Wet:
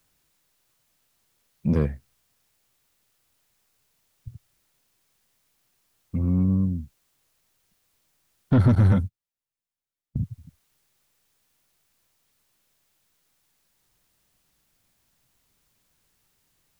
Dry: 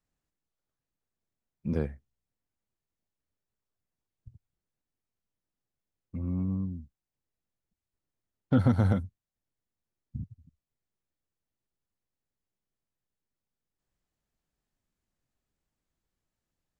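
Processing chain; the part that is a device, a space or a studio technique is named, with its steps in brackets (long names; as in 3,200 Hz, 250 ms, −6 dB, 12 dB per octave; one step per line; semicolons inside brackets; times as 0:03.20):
open-reel tape (soft clipping −23 dBFS, distortion −10 dB; parametric band 130 Hz +4.5 dB 1.13 octaves; white noise bed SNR 41 dB)
0:08.75–0:10.23: noise gate −34 dBFS, range −23 dB
level +8 dB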